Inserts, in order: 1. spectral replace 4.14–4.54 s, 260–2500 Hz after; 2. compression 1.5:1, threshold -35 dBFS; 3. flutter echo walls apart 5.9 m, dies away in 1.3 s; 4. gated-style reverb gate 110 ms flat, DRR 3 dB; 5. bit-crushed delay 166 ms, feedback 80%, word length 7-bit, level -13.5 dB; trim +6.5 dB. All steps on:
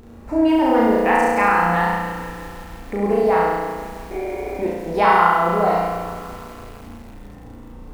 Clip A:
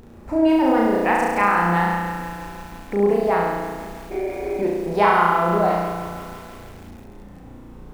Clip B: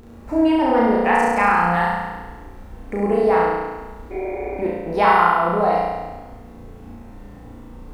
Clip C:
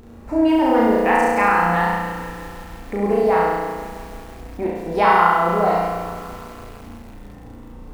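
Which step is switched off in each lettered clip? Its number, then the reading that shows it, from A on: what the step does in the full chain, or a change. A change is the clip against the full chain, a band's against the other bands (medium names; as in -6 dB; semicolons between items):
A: 4, loudness change -1.5 LU; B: 5, momentary loudness spread change -2 LU; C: 1, momentary loudness spread change +3 LU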